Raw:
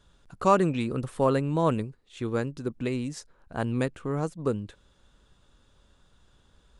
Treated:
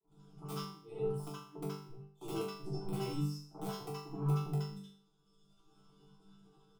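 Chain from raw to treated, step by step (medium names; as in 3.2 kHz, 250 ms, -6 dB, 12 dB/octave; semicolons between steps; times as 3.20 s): comb filter that takes the minimum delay 6.2 ms; dynamic bell 1.9 kHz, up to +5 dB, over -45 dBFS, Q 1.2; level held to a coarse grid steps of 13 dB; reverb removal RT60 1.5 s; inverted gate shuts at -24 dBFS, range -38 dB; integer overflow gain 33.5 dB; treble shelf 4.8 kHz +6.5 dB; static phaser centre 360 Hz, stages 8; chord resonator D3 sus4, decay 0.53 s; three bands offset in time mids, lows, highs 30/70 ms, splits 200/880 Hz; reverberation RT60 0.15 s, pre-delay 69 ms, DRR -7 dB; trim +10 dB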